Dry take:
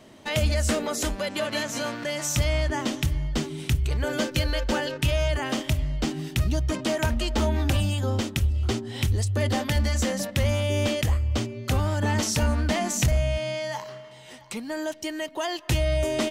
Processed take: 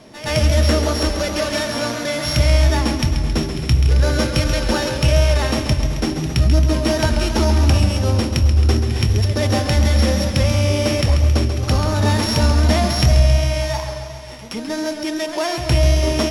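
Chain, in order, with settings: sample sorter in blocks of 8 samples; LPF 8500 Hz 12 dB/oct; pre-echo 0.12 s -12.5 dB; on a send at -12.5 dB: reverb RT60 0.50 s, pre-delay 6 ms; on the sum: warbling echo 0.135 s, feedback 66%, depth 80 cents, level -8.5 dB; gain +6.5 dB

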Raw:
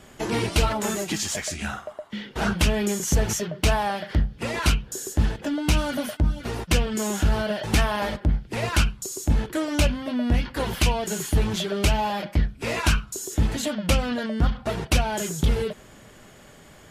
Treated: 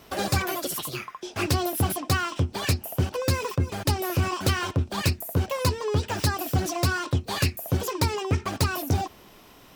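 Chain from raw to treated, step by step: speed mistake 45 rpm record played at 78 rpm; gain -2.5 dB

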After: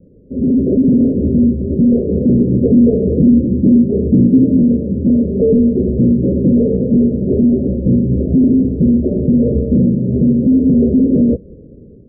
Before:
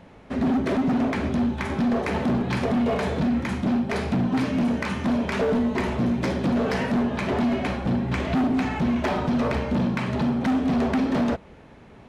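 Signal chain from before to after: steep low-pass 530 Hz 72 dB/oct; 2.39–4.57 dynamic EQ 300 Hz, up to +4 dB, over -36 dBFS, Q 1.8; AGC gain up to 8 dB; gain +4 dB

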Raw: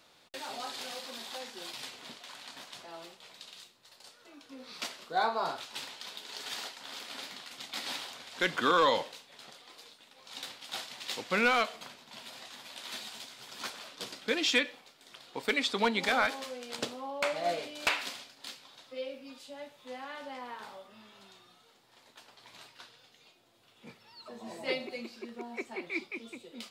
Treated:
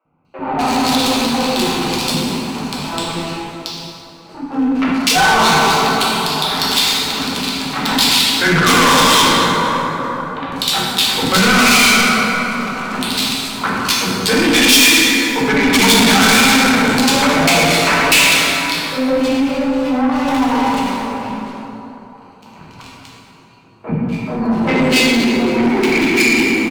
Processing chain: Wiener smoothing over 25 samples; in parallel at -3 dB: limiter -27.5 dBFS, peak gain reduction 10 dB; on the sum: fifteen-band EQ 160 Hz +9 dB, 630 Hz -9 dB, 2500 Hz +4 dB; sample leveller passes 3; resonator 89 Hz, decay 0.15 s, harmonics odd, mix 60%; three bands offset in time mids, lows, highs 50/250 ms, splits 440/1800 Hz; plate-style reverb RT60 3.2 s, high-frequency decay 0.45×, DRR -5.5 dB; sine folder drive 4 dB, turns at -7.5 dBFS; AGC gain up to 11 dB; soft clip -11.5 dBFS, distortion -9 dB; high shelf 3700 Hz +7 dB; gain +2 dB

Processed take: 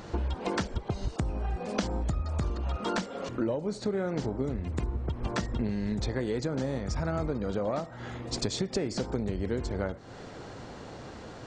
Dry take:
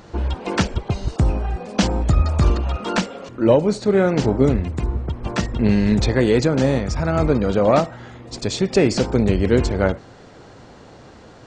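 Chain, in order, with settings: dynamic EQ 2600 Hz, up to -6 dB, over -46 dBFS, Q 3.8; compressor 12:1, threshold -27 dBFS, peak gain reduction 18 dB

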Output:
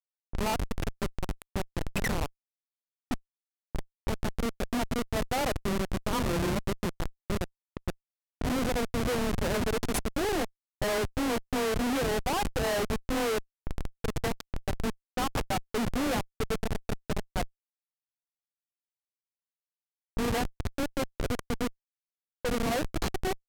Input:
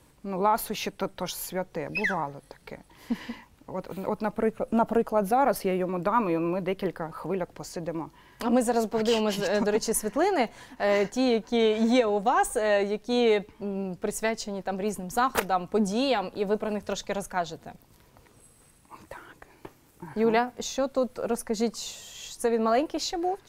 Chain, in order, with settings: frequency shift +17 Hz; Schmitt trigger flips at -24.5 dBFS; low-pass opened by the level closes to 800 Hz, open at -30.5 dBFS

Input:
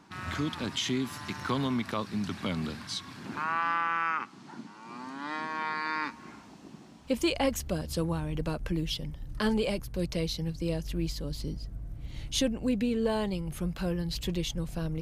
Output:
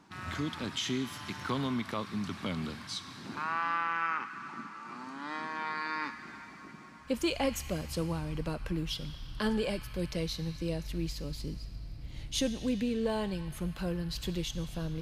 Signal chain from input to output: on a send: HPF 1100 Hz 24 dB/oct + reverb RT60 5.8 s, pre-delay 21 ms, DRR 9 dB; on the sum: gain -3 dB

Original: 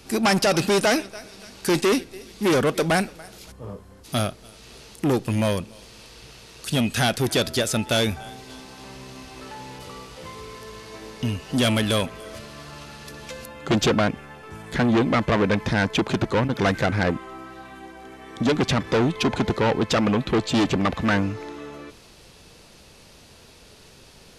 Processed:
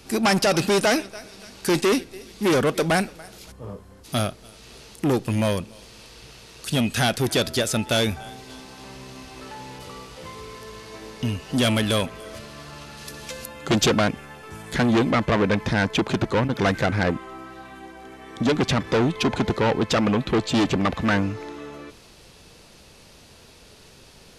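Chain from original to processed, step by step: 12.97–15.11 high shelf 4300 Hz +7 dB

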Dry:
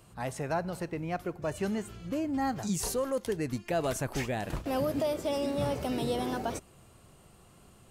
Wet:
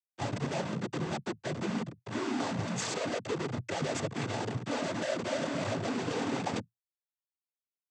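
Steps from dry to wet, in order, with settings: Schmitt trigger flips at -36.5 dBFS; noise vocoder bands 16; gain +1 dB

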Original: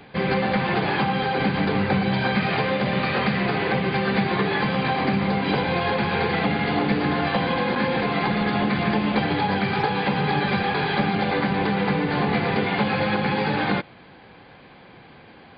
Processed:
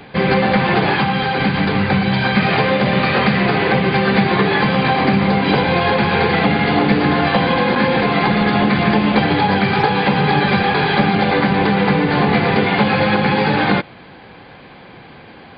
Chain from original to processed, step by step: 0.94–2.37 bell 450 Hz -4.5 dB 2 oct; gain +7.5 dB

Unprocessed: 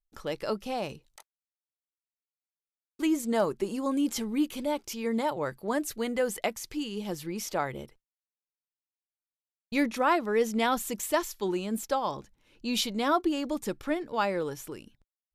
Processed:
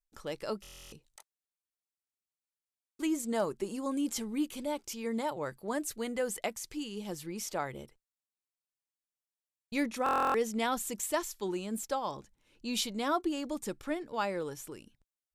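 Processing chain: bell 8200 Hz +5.5 dB 0.8 oct; stuck buffer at 0.62/10.04, samples 1024, times 12; gain -5 dB

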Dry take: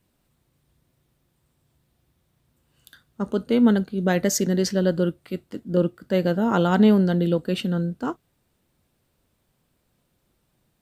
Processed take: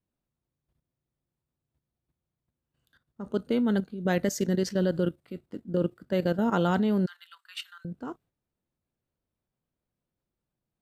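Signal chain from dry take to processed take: 7.06–7.85 steep high-pass 1100 Hz 48 dB/oct; level quantiser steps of 11 dB; gate -56 dBFS, range -7 dB; mismatched tape noise reduction decoder only; gain -2 dB

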